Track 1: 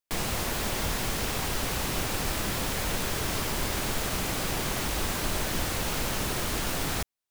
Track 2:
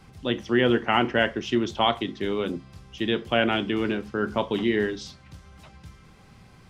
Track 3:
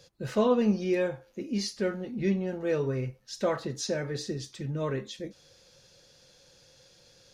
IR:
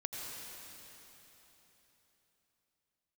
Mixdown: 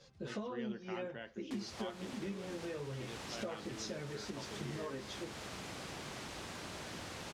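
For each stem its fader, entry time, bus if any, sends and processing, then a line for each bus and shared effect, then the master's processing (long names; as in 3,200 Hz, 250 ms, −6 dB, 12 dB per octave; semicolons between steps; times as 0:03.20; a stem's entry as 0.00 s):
−13.5 dB, 1.40 s, bus A, no send, no processing
−18.0 dB, 0.00 s, no bus, no send, downward compressor 1.5 to 1, threshold −40 dBFS, peak gain reduction 8.5 dB
−1.0 dB, 0.00 s, bus A, no send, string-ensemble chorus
bus A: 0.0 dB, high-pass filter 100 Hz 12 dB per octave; downward compressor 10 to 1, threshold −39 dBFS, peak gain reduction 18.5 dB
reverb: not used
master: low-pass filter 7,000 Hz 12 dB per octave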